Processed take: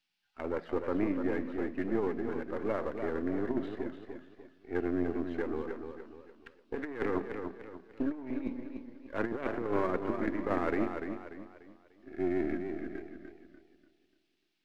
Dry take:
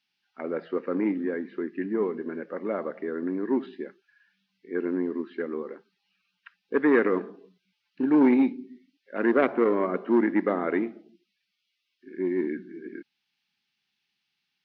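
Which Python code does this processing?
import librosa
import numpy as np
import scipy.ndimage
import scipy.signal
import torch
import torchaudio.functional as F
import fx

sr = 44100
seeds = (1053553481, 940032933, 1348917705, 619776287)

y = np.where(x < 0.0, 10.0 ** (-7.0 / 20.0) * x, x)
y = fx.over_compress(y, sr, threshold_db=-27.0, ratio=-0.5)
y = fx.echo_warbled(y, sr, ms=295, feedback_pct=38, rate_hz=2.8, cents=75, wet_db=-7)
y = y * 10.0 ** (-3.5 / 20.0)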